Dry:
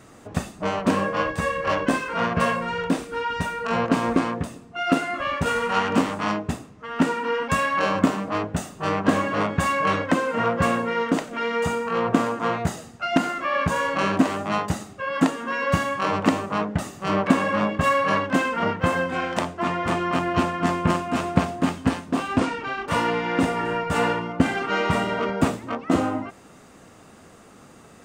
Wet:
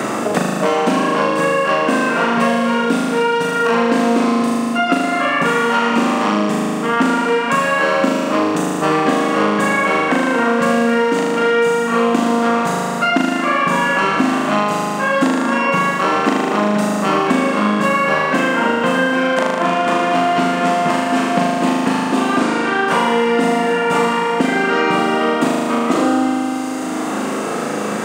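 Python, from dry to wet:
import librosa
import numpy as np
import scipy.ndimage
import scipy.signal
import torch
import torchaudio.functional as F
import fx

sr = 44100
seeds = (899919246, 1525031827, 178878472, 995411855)

y = scipy.signal.sosfilt(scipy.signal.butter(4, 190.0, 'highpass', fs=sr, output='sos'), x)
y = fx.room_flutter(y, sr, wall_m=6.6, rt60_s=1.4)
y = fx.band_squash(y, sr, depth_pct=100)
y = y * 10.0 ** (2.0 / 20.0)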